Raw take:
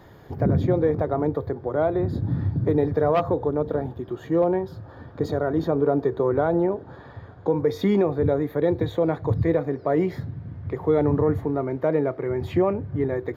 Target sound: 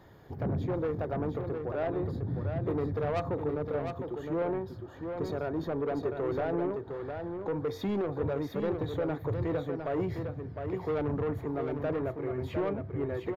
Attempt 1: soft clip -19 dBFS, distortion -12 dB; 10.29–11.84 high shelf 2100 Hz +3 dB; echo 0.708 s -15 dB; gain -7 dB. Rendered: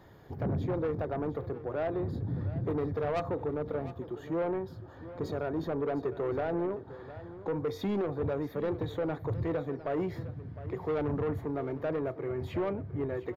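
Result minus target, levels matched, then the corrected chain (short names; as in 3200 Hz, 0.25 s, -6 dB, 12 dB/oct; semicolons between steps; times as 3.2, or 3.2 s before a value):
echo-to-direct -9 dB
soft clip -19 dBFS, distortion -12 dB; 10.29–11.84 high shelf 2100 Hz +3 dB; echo 0.708 s -6 dB; gain -7 dB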